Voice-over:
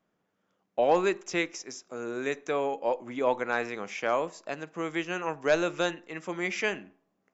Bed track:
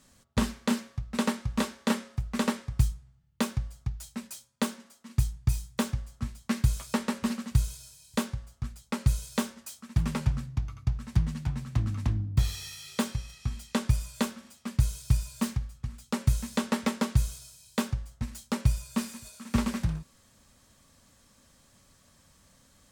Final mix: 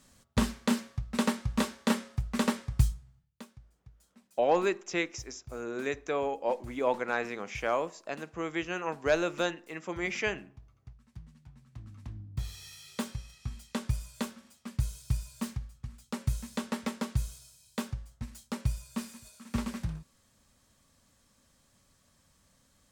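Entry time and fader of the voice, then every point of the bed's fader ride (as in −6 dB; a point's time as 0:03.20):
3.60 s, −2.0 dB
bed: 0:03.18 −0.5 dB
0:03.46 −22.5 dB
0:11.52 −22.5 dB
0:12.75 −6 dB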